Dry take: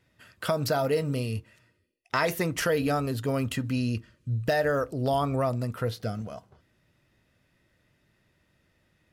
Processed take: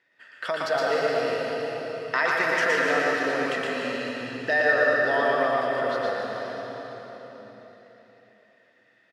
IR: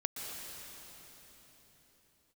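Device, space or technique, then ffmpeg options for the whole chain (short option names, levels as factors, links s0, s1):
station announcement: -filter_complex "[0:a]highpass=410,lowpass=4900,equalizer=f=1800:t=o:w=0.33:g=10.5,aecho=1:1:116.6|148.7:0.794|0.316[s0];[1:a]atrim=start_sample=2205[s1];[s0][s1]afir=irnorm=-1:irlink=0,asplit=2[s2][s3];[s3]adelay=695,lowpass=f=2000:p=1,volume=0.141,asplit=2[s4][s5];[s5]adelay=695,lowpass=f=2000:p=1,volume=0.35,asplit=2[s6][s7];[s7]adelay=695,lowpass=f=2000:p=1,volume=0.35[s8];[s2][s4][s6][s8]amix=inputs=4:normalize=0"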